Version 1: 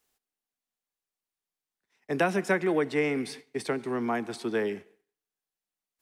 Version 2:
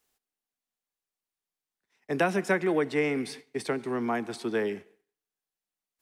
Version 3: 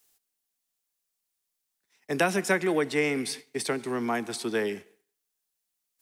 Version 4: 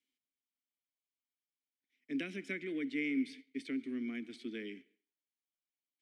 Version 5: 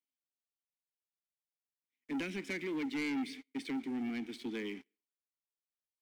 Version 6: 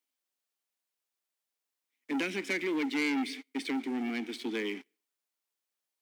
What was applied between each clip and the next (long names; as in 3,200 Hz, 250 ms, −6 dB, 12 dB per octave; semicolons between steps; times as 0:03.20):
no processing that can be heard
high-shelf EQ 3,600 Hz +11.5 dB
formant filter i
leveller curve on the samples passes 3; level −6.5 dB
high-pass filter 280 Hz 12 dB per octave; level +7.5 dB